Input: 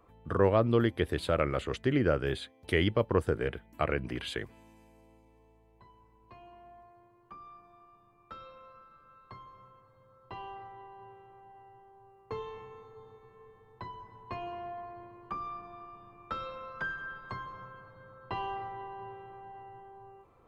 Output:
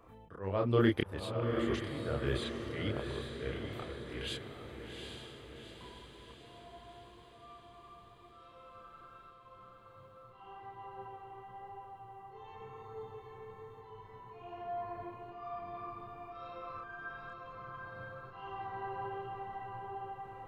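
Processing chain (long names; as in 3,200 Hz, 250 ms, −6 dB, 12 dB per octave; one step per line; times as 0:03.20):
volume swells 709 ms
multi-voice chorus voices 2, 1 Hz, delay 30 ms, depth 3 ms
feedback delay with all-pass diffusion 793 ms, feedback 56%, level −5 dB
level +7 dB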